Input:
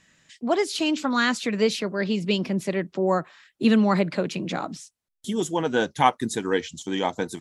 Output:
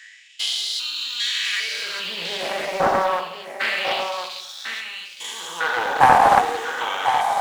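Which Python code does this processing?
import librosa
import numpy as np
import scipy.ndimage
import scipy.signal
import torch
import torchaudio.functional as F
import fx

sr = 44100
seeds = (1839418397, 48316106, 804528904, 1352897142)

p1 = fx.spec_steps(x, sr, hold_ms=400)
p2 = fx.dereverb_blind(p1, sr, rt60_s=1.8)
p3 = fx.quant_dither(p2, sr, seeds[0], bits=8, dither='none')
p4 = p2 + (p3 * librosa.db_to_amplitude(-4.5))
p5 = fx.filter_lfo_highpass(p4, sr, shape='sine', hz=0.28, low_hz=720.0, high_hz=3900.0, q=3.8)
p6 = p5 + fx.echo_single(p5, sr, ms=1048, db=-7.5, dry=0)
p7 = fx.rev_fdn(p6, sr, rt60_s=0.83, lf_ratio=1.25, hf_ratio=0.75, size_ms=36.0, drr_db=3.0)
p8 = fx.doppler_dist(p7, sr, depth_ms=0.36)
y = p8 * librosa.db_to_amplitude(6.0)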